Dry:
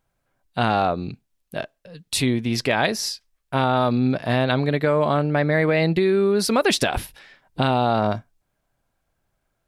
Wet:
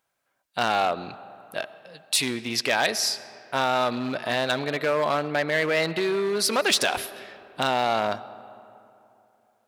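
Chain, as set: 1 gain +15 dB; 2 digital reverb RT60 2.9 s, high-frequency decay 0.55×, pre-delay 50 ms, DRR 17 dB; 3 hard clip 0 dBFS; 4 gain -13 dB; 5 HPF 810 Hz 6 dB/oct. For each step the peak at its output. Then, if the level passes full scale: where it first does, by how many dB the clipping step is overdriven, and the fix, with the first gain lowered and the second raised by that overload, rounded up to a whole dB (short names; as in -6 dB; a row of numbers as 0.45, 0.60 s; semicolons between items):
+8.0, +8.0, 0.0, -13.0, -8.5 dBFS; step 1, 8.0 dB; step 1 +7 dB, step 4 -5 dB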